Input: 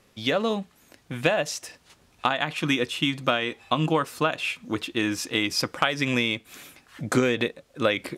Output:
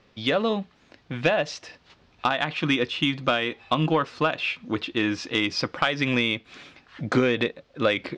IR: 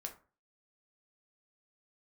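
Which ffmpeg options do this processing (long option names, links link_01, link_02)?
-af "lowpass=frequency=4900:width=0.5412,lowpass=frequency=4900:width=1.3066,acontrast=77,volume=-5.5dB"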